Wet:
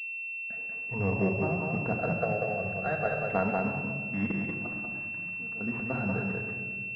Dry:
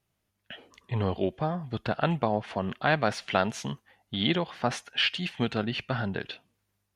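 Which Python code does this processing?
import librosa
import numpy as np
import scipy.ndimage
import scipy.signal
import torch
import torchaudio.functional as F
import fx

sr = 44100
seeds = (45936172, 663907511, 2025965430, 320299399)

y = fx.fixed_phaser(x, sr, hz=960.0, stages=6, at=(1.97, 3.28))
y = fx.level_steps(y, sr, step_db=23, at=(4.25, 5.6), fade=0.02)
y = y + 10.0 ** (-3.5 / 20.0) * np.pad(y, (int(189 * sr / 1000.0), 0))[:len(y)]
y = fx.room_shoebox(y, sr, seeds[0], volume_m3=2600.0, walls='mixed', distance_m=1.7)
y = fx.pwm(y, sr, carrier_hz=2700.0)
y = F.gain(torch.from_numpy(y), -4.0).numpy()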